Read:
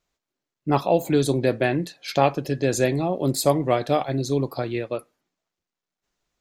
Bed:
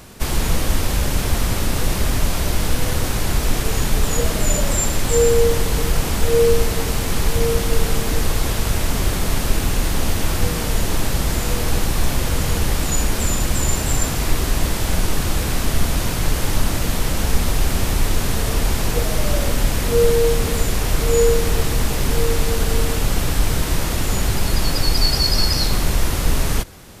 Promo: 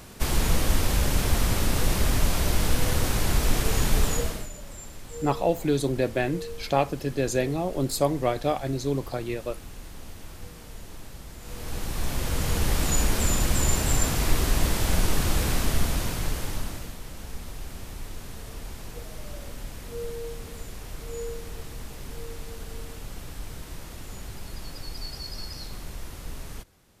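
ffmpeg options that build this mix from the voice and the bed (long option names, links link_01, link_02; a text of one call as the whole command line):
ffmpeg -i stem1.wav -i stem2.wav -filter_complex "[0:a]adelay=4550,volume=-4dB[link_01];[1:a]volume=14.5dB,afade=type=out:start_time=4.01:duration=0.48:silence=0.11885,afade=type=in:start_time=11.39:duration=1.47:silence=0.11885,afade=type=out:start_time=15.47:duration=1.49:silence=0.16788[link_02];[link_01][link_02]amix=inputs=2:normalize=0" out.wav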